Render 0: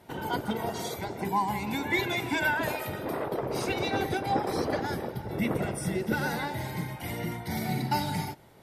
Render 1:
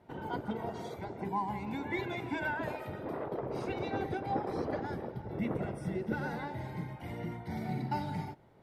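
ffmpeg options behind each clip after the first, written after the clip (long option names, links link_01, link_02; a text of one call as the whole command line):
ffmpeg -i in.wav -af "lowpass=frequency=1300:poles=1,volume=-5dB" out.wav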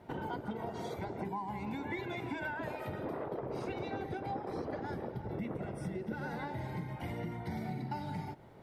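ffmpeg -i in.wav -af "acompressor=threshold=-42dB:ratio=6,volume=6dB" out.wav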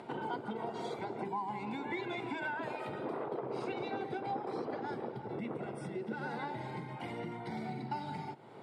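ffmpeg -i in.wav -af "acompressor=mode=upward:threshold=-43dB:ratio=2.5,highpass=frequency=150:width=0.5412,highpass=frequency=150:width=1.3066,equalizer=frequency=180:width_type=q:width=4:gain=-9,equalizer=frequency=290:width_type=q:width=4:gain=-4,equalizer=frequency=590:width_type=q:width=4:gain=-5,equalizer=frequency=1800:width_type=q:width=4:gain=-5,equalizer=frequency=6000:width_type=q:width=4:gain=-8,lowpass=frequency=8900:width=0.5412,lowpass=frequency=8900:width=1.3066,volume=3dB" out.wav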